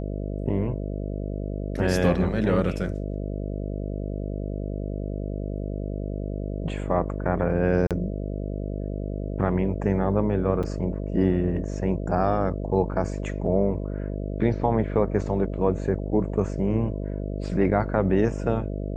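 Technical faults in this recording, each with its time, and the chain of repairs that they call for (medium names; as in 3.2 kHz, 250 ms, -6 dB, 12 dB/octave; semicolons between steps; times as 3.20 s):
buzz 50 Hz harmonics 13 -30 dBFS
7.87–7.91 s: dropout 37 ms
10.63–10.64 s: dropout 5.6 ms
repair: de-hum 50 Hz, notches 13; interpolate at 7.87 s, 37 ms; interpolate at 10.63 s, 5.6 ms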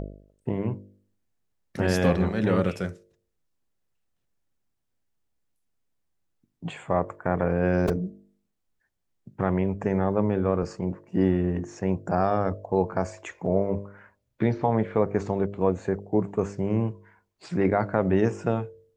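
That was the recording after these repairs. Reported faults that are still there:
nothing left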